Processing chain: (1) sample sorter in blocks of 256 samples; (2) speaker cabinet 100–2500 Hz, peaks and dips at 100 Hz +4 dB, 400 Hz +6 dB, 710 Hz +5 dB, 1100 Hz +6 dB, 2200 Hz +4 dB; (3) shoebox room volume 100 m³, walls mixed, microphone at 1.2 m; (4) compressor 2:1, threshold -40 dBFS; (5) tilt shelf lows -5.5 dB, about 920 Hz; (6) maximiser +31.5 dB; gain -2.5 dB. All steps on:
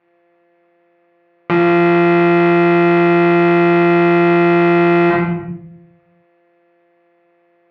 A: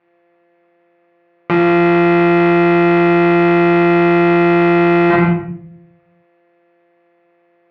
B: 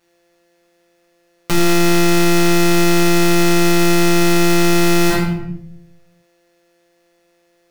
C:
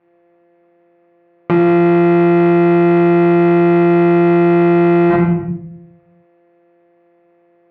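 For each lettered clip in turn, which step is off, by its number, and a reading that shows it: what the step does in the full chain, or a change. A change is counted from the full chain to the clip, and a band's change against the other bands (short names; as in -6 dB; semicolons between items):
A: 4, mean gain reduction 10.5 dB; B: 2, 4 kHz band +14.0 dB; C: 5, 2 kHz band -7.5 dB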